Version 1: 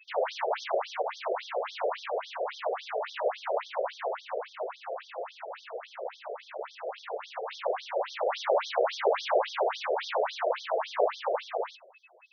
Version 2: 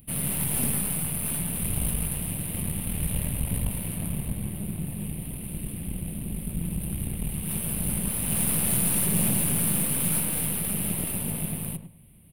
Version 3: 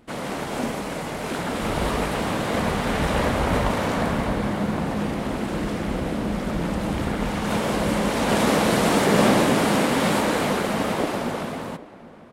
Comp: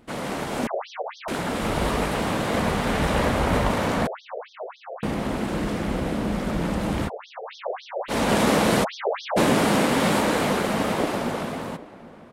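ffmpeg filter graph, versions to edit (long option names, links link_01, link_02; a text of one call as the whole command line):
ffmpeg -i take0.wav -i take1.wav -i take2.wav -filter_complex "[0:a]asplit=4[link_01][link_02][link_03][link_04];[2:a]asplit=5[link_05][link_06][link_07][link_08][link_09];[link_05]atrim=end=0.672[link_10];[link_01]atrim=start=0.668:end=1.282[link_11];[link_06]atrim=start=1.278:end=4.072[link_12];[link_02]atrim=start=4.068:end=5.032[link_13];[link_07]atrim=start=5.028:end=7.1[link_14];[link_03]atrim=start=7.06:end=8.12[link_15];[link_08]atrim=start=8.08:end=8.85[link_16];[link_04]atrim=start=8.83:end=9.38[link_17];[link_09]atrim=start=9.36[link_18];[link_10][link_11]acrossfade=duration=0.004:curve1=hsin:curve2=hsin[link_19];[link_19][link_12]acrossfade=duration=0.004:curve1=hsin:curve2=hsin[link_20];[link_20][link_13]acrossfade=duration=0.004:curve1=hsin:curve2=hsin[link_21];[link_21][link_14]acrossfade=duration=0.004:curve1=hsin:curve2=hsin[link_22];[link_22][link_15]acrossfade=duration=0.04:curve1=tri:curve2=tri[link_23];[link_23][link_16]acrossfade=duration=0.04:curve1=tri:curve2=tri[link_24];[link_24][link_17]acrossfade=duration=0.02:curve1=tri:curve2=tri[link_25];[link_25][link_18]acrossfade=duration=0.02:curve1=tri:curve2=tri" out.wav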